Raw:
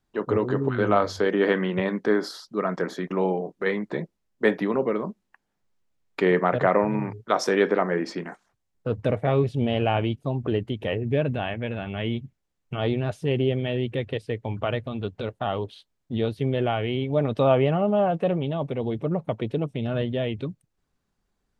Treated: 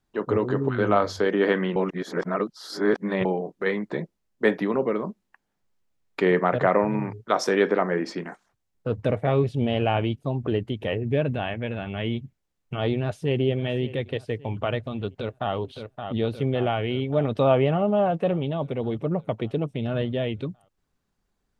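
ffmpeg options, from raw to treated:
-filter_complex "[0:a]asplit=2[a][b];[b]afade=t=in:st=12.91:d=0.01,afade=t=out:st=13.43:d=0.01,aecho=0:1:570|1140|1710|2280:0.149624|0.0673306|0.0302988|0.0136344[c];[a][c]amix=inputs=2:normalize=0,asplit=2[d][e];[e]afade=t=in:st=15.07:d=0.01,afade=t=out:st=15.55:d=0.01,aecho=0:1:570|1140|1710|2280|2850|3420|3990|4560|5130:0.446684|0.290344|0.188724|0.12267|0.0797358|0.0518283|0.0336884|0.0218974|0.0142333[f];[d][f]amix=inputs=2:normalize=0,asplit=3[g][h][i];[g]atrim=end=1.762[j];[h]atrim=start=1.758:end=3.252,asetpts=PTS-STARTPTS,areverse[k];[i]atrim=start=3.248[l];[j][k]acrossfade=d=0.004:c1=hsin:c2=hsin[m];[m][l]acrossfade=d=0.004:c1=hsin:c2=hsin"

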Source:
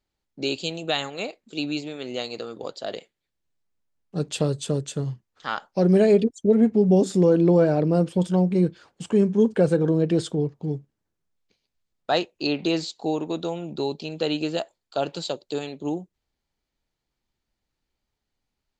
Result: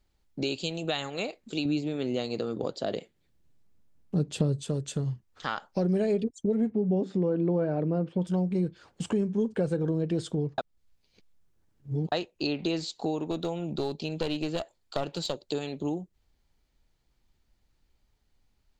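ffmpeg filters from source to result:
-filter_complex "[0:a]asettb=1/sr,asplit=3[a][b][c];[a]atrim=end=1.654[d];[b]atrim=start=1.65:end=4.63,asetpts=PTS-STARTPTS,afade=t=in:d=0.004:c=qsin,afade=t=out:st=2.976:d=0.004:c=qsin,equalizer=f=190:w=0.38:g=9[e];[c]atrim=start=4.626[f];[d][e]acrossfade=d=0.004:c1=hsin:c2=qsin[g];[g][f]acrossfade=d=0.004:c1=qsin:c2=hsin,asettb=1/sr,asplit=3[h][i][j];[h]atrim=end=6.714[k];[i]atrim=start=6.71:end=8.27,asetpts=PTS-STARTPTS,afade=t=in:d=0.004:c=qsin,afade=t=out:st=1.556:d=0.004:c=qsin,highpass=120,lowpass=2.5k[l];[j]atrim=start=8.266[m];[k][l]acrossfade=d=0.004:c1=hsin:c2=qsin[n];[n][m]acrossfade=d=0.004:c1=qsin:c2=hsin,asettb=1/sr,asplit=3[o][p][q];[o]atrim=end=13.314[r];[p]atrim=start=13.31:end=15.43,asetpts=PTS-STARTPTS,afade=t=in:d=0.004:c=qsin,afade=t=out:st=2.116:d=0.004:c=qsin,aeval=exprs='clip(val(0),-1,0.0596)':c=same[s];[q]atrim=start=15.426[t];[r][s]acrossfade=d=0.004:c1=hsin:c2=qsin[u];[u][t]acrossfade=d=0.004:c1=qsin:c2=hsin,asplit=3[v][w][x];[v]atrim=end=10.582[y];[w]atrim=start=10.578:end=12.122,asetpts=PTS-STARTPTS,areverse[z];[x]atrim=start=12.118[aa];[y][z]acrossfade=d=0.004:c1=hsin:c2=hsin[ab];[ab][aa]acrossfade=d=0.004:c1=hsin:c2=hsin,lowshelf=f=100:g=10.5,acompressor=threshold=-36dB:ratio=2.5,volume=4.5dB"

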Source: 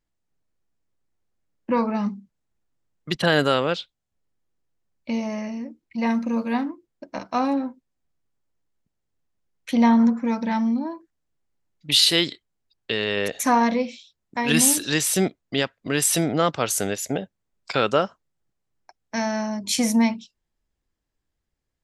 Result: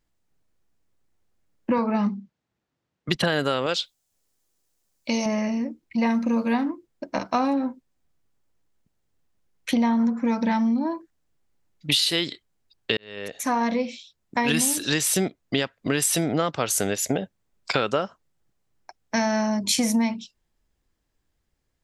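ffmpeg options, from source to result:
-filter_complex "[0:a]asettb=1/sr,asplit=3[a][b][c];[a]atrim=end=1.784[d];[b]atrim=start=1.78:end=3.09,asetpts=PTS-STARTPTS,afade=t=in:d=0.004:c=qsin,afade=t=out:st=1.306:d=0.004:c=qsin,highpass=100,lowpass=5k[e];[c]atrim=start=3.086[f];[d][e]acrossfade=d=0.004:c1=hsin:c2=qsin[g];[g][f]acrossfade=d=0.004:c1=qsin:c2=hsin,asettb=1/sr,asplit=3[h][i][j];[h]atrim=end=3.664[k];[i]atrim=start=3.66:end=5.26,asetpts=PTS-STARTPTS,afade=t=in:d=0.004:c=qsin,afade=t=out:st=1.596:d=0.004:c=qsin,bass=f=250:g=-7,treble=f=4k:g=13[l];[j]atrim=start=5.256[m];[k][l]acrossfade=d=0.004:c1=hsin:c2=qsin[n];[n][m]acrossfade=d=0.004:c1=qsin:c2=hsin,asplit=2[o][p];[o]atrim=end=12.97,asetpts=PTS-STARTPTS,afade=t=out:st=12.966:d=0.004:c=hsin[q];[p]atrim=start=12.97,asetpts=PTS-STARTPTS,afade=t=in:d=1.44[r];[q][r]concat=n=2:v=0:a=1,acompressor=threshold=-25dB:ratio=6,volume=5.5dB"

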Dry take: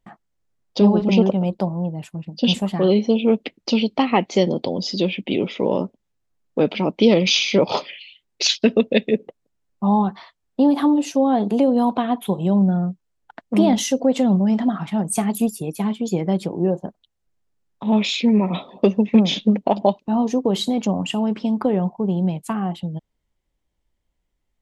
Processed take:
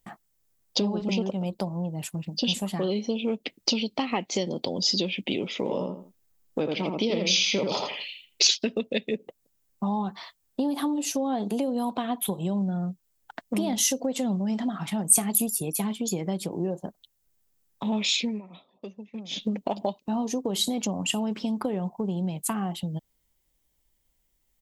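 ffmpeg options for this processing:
-filter_complex "[0:a]asplit=3[a][b][c];[a]afade=t=out:st=5.65:d=0.02[d];[b]asplit=2[e][f];[f]adelay=82,lowpass=f=2.3k:p=1,volume=-3dB,asplit=2[g][h];[h]adelay=82,lowpass=f=2.3k:p=1,volume=0.23,asplit=2[i][j];[j]adelay=82,lowpass=f=2.3k:p=1,volume=0.23[k];[e][g][i][k]amix=inputs=4:normalize=0,afade=t=in:st=5.65:d=0.02,afade=t=out:st=8.53:d=0.02[l];[c]afade=t=in:st=8.53:d=0.02[m];[d][l][m]amix=inputs=3:normalize=0,asplit=3[n][o][p];[n]atrim=end=18.42,asetpts=PTS-STARTPTS,afade=t=out:st=18.13:d=0.29:silence=0.0668344[q];[o]atrim=start=18.42:end=19.29,asetpts=PTS-STARTPTS,volume=-23.5dB[r];[p]atrim=start=19.29,asetpts=PTS-STARTPTS,afade=t=in:d=0.29:silence=0.0668344[s];[q][r][s]concat=n=3:v=0:a=1,acompressor=threshold=-27dB:ratio=3,aemphasis=mode=production:type=75fm"

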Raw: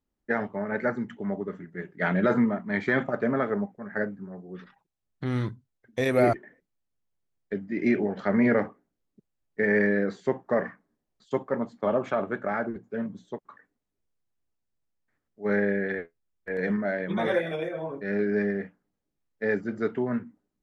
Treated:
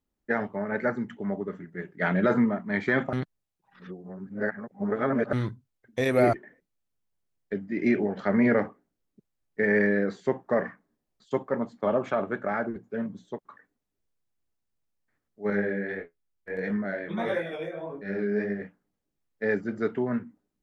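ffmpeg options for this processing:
-filter_complex "[0:a]asettb=1/sr,asplit=3[a][b][c];[a]atrim=end=15.504[d];[b]atrim=start=15.5:end=18.62,asetpts=PTS-STARTPTS,afade=t=in:d=0.004:c=qsin,afade=t=out:st=3.116:d=0.004:c=qsin,flanger=delay=18.5:depth=6:speed=1.6[e];[c]atrim=start=18.616[f];[d][e]acrossfade=d=0.004:c1=hsin:c2=qsin[g];[g][f]acrossfade=d=0.004:c1=qsin:c2=hsin,asplit=3[h][i][j];[h]atrim=end=3.132[k];[i]atrim=start=3.128:end=5.332,asetpts=PTS-STARTPTS,areverse[l];[j]atrim=start=5.328[m];[k][l]acrossfade=d=0.004:c1=hsin:c2=hsin[n];[n][m]acrossfade=d=0.004:c1=hsin:c2=hsin"

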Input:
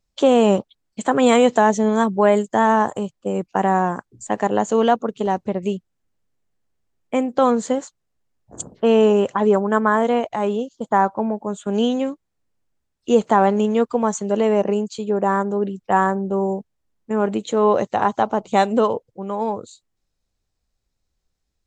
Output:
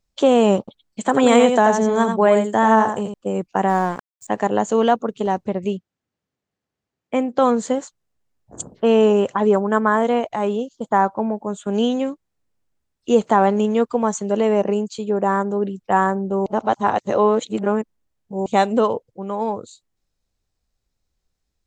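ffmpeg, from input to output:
-filter_complex "[0:a]asettb=1/sr,asplit=3[a][b][c];[a]atrim=end=0.594[d];[b]atrim=start=0.59:end=3.14,asetpts=PTS-STARTPTS,afade=t=in:d=0.004:c=qsin,afade=t=out:st=2.546:d=0.004:c=qsin,aecho=1:1:86:0.473,atrim=end_sample=112455[e];[c]atrim=start=3.136[f];[d][e]acrossfade=d=0.004:c1=hsin:c2=qsin[g];[g][f]acrossfade=d=0.004:c1=qsin:c2=hsin,asplit=3[h][i][j];[h]afade=t=out:st=3.68:d=0.02[k];[i]aeval=exprs='sgn(val(0))*max(abs(val(0))-0.0133,0)':c=same,afade=t=in:st=3.68:d=0.02,afade=t=out:st=4.27:d=0.02[l];[j]afade=t=in:st=4.27:d=0.02[m];[k][l][m]amix=inputs=3:normalize=0,asettb=1/sr,asplit=3[n][o][p];[n]atrim=end=5.644[q];[o]atrim=start=5.64:end=7.38,asetpts=PTS-STARTPTS,afade=t=in:d=0.004:c=qsin,afade=t=out:st=1.736:d=0.004:c=qsin,highpass=100,lowpass=6.3k[r];[p]atrim=start=7.376[s];[q][r]acrossfade=d=0.004:c1=hsin:c2=qsin[t];[t][s]acrossfade=d=0.004:c1=qsin:c2=hsin,asplit=3[u][v][w];[u]atrim=end=16.462[x];[v]atrim=start=16.458:end=18.462,asetpts=PTS-STARTPTS,areverse[y];[w]atrim=start=18.458[z];[x][y]acrossfade=d=0.004:c1=hsin:c2=hsin[aa];[aa][z]acrossfade=d=0.004:c1=hsin:c2=hsin"

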